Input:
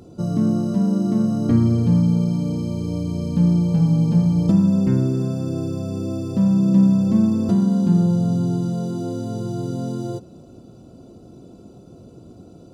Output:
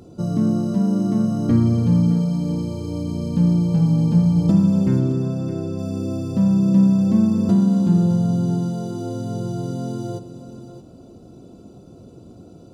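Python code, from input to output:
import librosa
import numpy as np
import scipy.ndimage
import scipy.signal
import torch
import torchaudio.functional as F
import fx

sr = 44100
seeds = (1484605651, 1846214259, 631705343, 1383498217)

y = fx.high_shelf(x, sr, hz=6300.0, db=-10.0, at=(4.99, 5.79))
y = y + 10.0 ** (-12.5 / 20.0) * np.pad(y, (int(617 * sr / 1000.0), 0))[:len(y)]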